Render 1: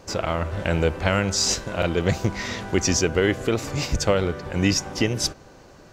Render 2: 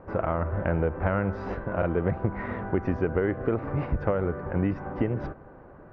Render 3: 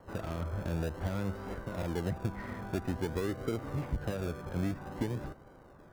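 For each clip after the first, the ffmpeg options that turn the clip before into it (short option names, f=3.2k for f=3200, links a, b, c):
-af "lowpass=f=1.6k:w=0.5412,lowpass=f=1.6k:w=1.3066,acompressor=threshold=-21dB:ratio=6"
-filter_complex "[0:a]acrossover=split=300|440[a][b][c];[b]acrusher=samples=36:mix=1:aa=0.000001:lfo=1:lforange=21.6:lforate=0.5[d];[c]asoftclip=type=tanh:threshold=-32.5dB[e];[a][d][e]amix=inputs=3:normalize=0,volume=-6.5dB"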